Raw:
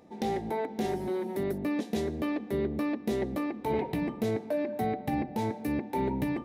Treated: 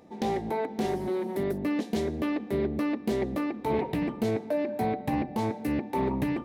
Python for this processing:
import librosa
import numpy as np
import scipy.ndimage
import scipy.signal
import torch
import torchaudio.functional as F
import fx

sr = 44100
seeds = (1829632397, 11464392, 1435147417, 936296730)

y = fx.doppler_dist(x, sr, depth_ms=0.21)
y = y * 10.0 ** (2.0 / 20.0)